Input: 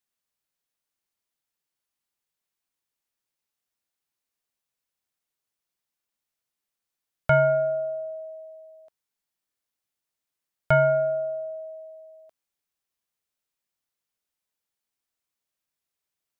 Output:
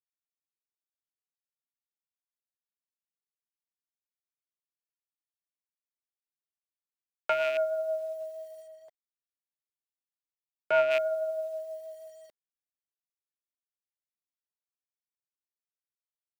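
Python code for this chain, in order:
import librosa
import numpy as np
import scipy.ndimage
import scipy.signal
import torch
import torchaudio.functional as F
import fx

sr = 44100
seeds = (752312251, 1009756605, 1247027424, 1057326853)

y = fx.rattle_buzz(x, sr, strikes_db=-33.0, level_db=-19.0)
y = fx.notch(y, sr, hz=660.0, q=18.0)
y = fx.rider(y, sr, range_db=4, speed_s=0.5)
y = fx.rotary_switch(y, sr, hz=0.6, then_hz=6.3, switch_at_s=4.97)
y = scipy.signal.sosfilt(scipy.signal.butter(6, 270.0, 'highpass', fs=sr, output='sos'), y)
y = fx.quant_dither(y, sr, seeds[0], bits=10, dither='none')
y = fx.high_shelf(y, sr, hz=2200.0, db=-10.5, at=(8.66, 10.9), fade=0.02)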